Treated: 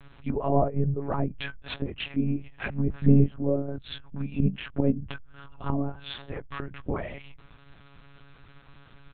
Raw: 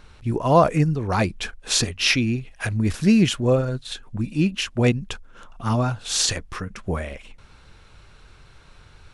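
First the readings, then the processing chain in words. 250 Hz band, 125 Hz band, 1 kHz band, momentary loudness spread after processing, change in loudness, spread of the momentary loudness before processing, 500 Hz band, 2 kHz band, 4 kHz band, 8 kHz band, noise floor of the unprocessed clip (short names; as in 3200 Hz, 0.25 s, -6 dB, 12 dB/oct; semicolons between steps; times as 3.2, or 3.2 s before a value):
-5.5 dB, -4.0 dB, -9.0 dB, 15 LU, -7.0 dB, 15 LU, -7.0 dB, -11.0 dB, -15.0 dB, under -40 dB, -50 dBFS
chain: treble ducked by the level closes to 560 Hz, closed at -17 dBFS; comb 4.6 ms, depth 65%; de-hum 59.27 Hz, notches 2; monotone LPC vocoder at 8 kHz 140 Hz; gain -5 dB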